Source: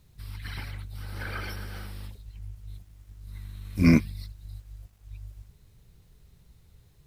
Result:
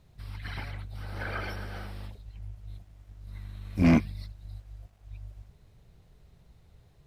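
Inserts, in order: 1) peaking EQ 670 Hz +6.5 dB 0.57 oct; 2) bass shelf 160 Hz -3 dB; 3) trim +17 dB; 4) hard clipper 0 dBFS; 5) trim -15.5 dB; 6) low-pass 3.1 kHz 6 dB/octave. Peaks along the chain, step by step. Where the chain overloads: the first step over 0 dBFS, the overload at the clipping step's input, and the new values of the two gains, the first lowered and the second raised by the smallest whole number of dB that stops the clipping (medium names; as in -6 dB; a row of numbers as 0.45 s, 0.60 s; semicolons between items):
-7.5 dBFS, -8.0 dBFS, +9.0 dBFS, 0.0 dBFS, -15.5 dBFS, -15.5 dBFS; step 3, 9.0 dB; step 3 +8 dB, step 5 -6.5 dB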